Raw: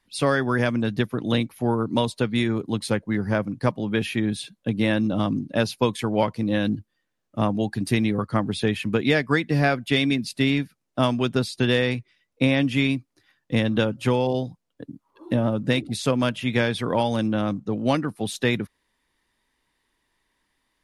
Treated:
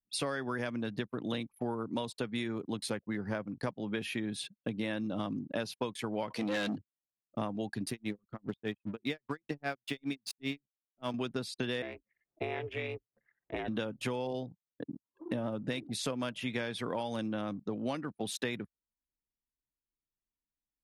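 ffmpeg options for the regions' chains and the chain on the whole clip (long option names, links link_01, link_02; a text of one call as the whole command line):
ffmpeg -i in.wav -filter_complex "[0:a]asettb=1/sr,asplit=3[link_01][link_02][link_03];[link_01]atrim=end=6.304[link_04];[link_02]atrim=start=6.3:end=6.78,asetpts=PTS-STARTPTS,afade=type=in:duration=0.004:curve=qsin,afade=type=out:start_time=0.476:duration=0.004:curve=qsin,bandreject=frequency=60:width_type=h:width=6,bandreject=frequency=120:width_type=h:width=6,bandreject=frequency=180:width_type=h:width=6,bandreject=frequency=240:width_type=h:width=6,bandreject=frequency=300:width_type=h:width=6,asplit=2[link_05][link_06];[link_06]highpass=frequency=720:poles=1,volume=23dB,asoftclip=type=tanh:threshold=-11dB[link_07];[link_05][link_07]amix=inputs=2:normalize=0,lowpass=frequency=4800:poles=1,volume=-6dB[link_08];[link_03]atrim=start=6.776[link_09];[link_04][link_08]acrossfade=duration=0.004:curve1=hsin:curve2=qsin[link_10];[link_10][link_09]acrossfade=duration=0.004:curve1=qsin:curve2=hsin,asettb=1/sr,asplit=3[link_11][link_12][link_13];[link_11]atrim=end=7.904[link_14];[link_12]atrim=start=7.9:end=11.14,asetpts=PTS-STARTPTS,afade=type=in:duration=0.004:curve=qsin,afade=type=out:start_time=3.236:duration=0.004:curve=qsin,highpass=41,aeval=exprs='sgn(val(0))*max(abs(val(0))-0.00668,0)':channel_layout=same,aeval=exprs='val(0)*pow(10,-31*(0.5-0.5*cos(2*PI*5*n/s))/20)':channel_layout=same[link_15];[link_13]atrim=start=11.136[link_16];[link_14][link_15]acrossfade=duration=0.004:curve1=hsin:curve2=qsin[link_17];[link_17][link_16]acrossfade=duration=0.004:curve1=qsin:curve2=hsin,asettb=1/sr,asplit=3[link_18][link_19][link_20];[link_18]atrim=end=11.824[link_21];[link_19]atrim=start=11.82:end=13.68,asetpts=PTS-STARTPTS,afade=type=in:duration=0.004:curve=qsin,afade=type=out:start_time=1.856:duration=0.004:curve=qsin,acrossover=split=290 2300:gain=0.141 1 0.141[link_22][link_23][link_24];[link_22][link_23][link_24]amix=inputs=3:normalize=0,aeval=exprs='val(0)*sin(2*PI*160*n/s)':channel_layout=same,acompressor=mode=upward:threshold=-39dB:ratio=2.5:attack=3.2:release=140:knee=2.83:detection=peak[link_25];[link_20]atrim=start=13.676[link_26];[link_21][link_25]acrossfade=duration=0.004:curve1=hsin:curve2=qsin[link_27];[link_27][link_26]acrossfade=duration=0.004:curve1=qsin:curve2=hsin,highpass=frequency=190:poles=1,anlmdn=0.1,acompressor=threshold=-34dB:ratio=4" out.wav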